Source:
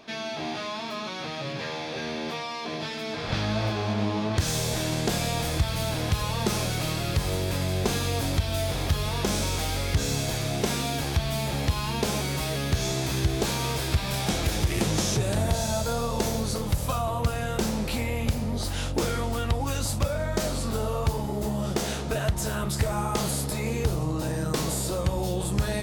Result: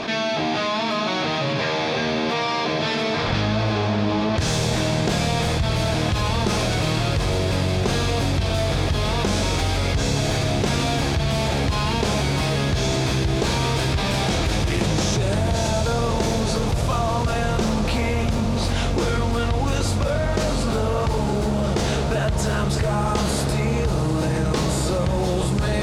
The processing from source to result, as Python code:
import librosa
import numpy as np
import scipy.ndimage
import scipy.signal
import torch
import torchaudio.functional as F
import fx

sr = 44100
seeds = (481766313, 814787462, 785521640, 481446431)

y = fx.air_absorb(x, sr, metres=61.0)
y = fx.echo_diffused(y, sr, ms=747, feedback_pct=77, wet_db=-10.5)
y = fx.env_flatten(y, sr, amount_pct=70)